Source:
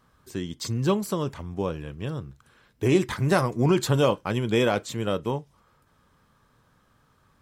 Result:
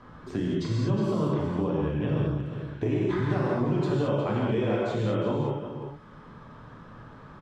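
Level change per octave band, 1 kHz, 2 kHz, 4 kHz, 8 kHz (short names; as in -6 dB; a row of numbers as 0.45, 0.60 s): -3.5 dB, -5.5 dB, -8.5 dB, under -15 dB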